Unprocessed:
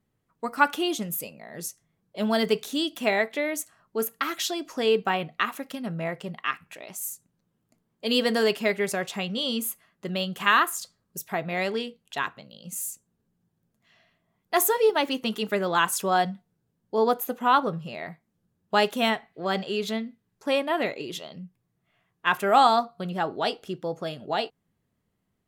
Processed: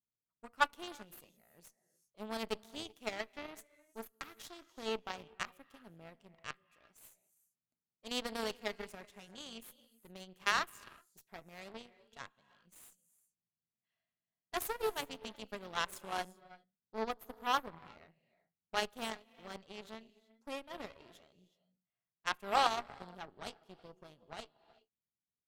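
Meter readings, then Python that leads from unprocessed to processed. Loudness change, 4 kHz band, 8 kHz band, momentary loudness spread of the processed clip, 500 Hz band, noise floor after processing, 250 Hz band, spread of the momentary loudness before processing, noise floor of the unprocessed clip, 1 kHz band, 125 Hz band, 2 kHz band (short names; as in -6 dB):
-13.5 dB, -13.0 dB, -16.0 dB, 22 LU, -17.5 dB, under -85 dBFS, -19.0 dB, 15 LU, -76 dBFS, -13.5 dB, -20.5 dB, -13.5 dB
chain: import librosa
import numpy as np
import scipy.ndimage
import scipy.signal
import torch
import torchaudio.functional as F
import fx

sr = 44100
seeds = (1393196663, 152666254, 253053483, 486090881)

y = fx.rev_gated(x, sr, seeds[0], gate_ms=410, shape='rising', drr_db=11.5)
y = fx.cheby_harmonics(y, sr, harmonics=(3, 5, 7, 8), levels_db=(-13, -38, -27, -31), full_scale_db=-5.5)
y = y * librosa.db_to_amplitude(-6.5)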